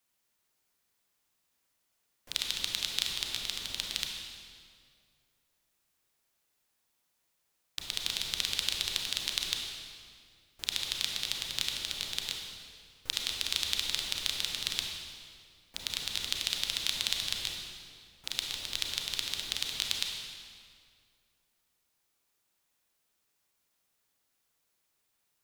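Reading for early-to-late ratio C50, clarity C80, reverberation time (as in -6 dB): 2.0 dB, 3.5 dB, 2.1 s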